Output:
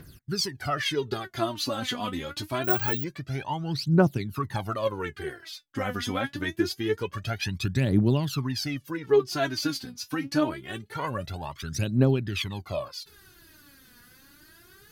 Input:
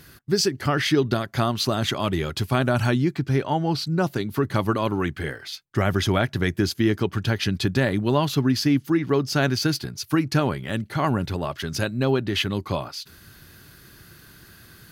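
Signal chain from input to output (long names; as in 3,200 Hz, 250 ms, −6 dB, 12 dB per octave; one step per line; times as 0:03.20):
phase shifter 0.25 Hz, delay 4.2 ms, feedback 79%
0:02.64–0:03.04: bad sample-rate conversion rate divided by 2×, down filtered, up zero stuff
level −9 dB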